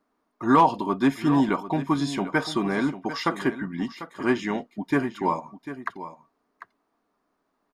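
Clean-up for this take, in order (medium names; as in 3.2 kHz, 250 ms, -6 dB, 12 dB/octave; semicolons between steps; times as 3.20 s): inverse comb 746 ms -13 dB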